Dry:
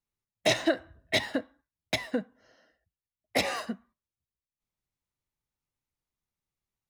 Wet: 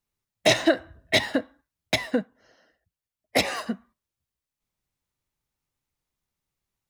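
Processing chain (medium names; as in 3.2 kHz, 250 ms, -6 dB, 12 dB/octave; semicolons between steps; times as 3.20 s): 2.21–3.66 s: harmonic-percussive split harmonic -7 dB; trim +5.5 dB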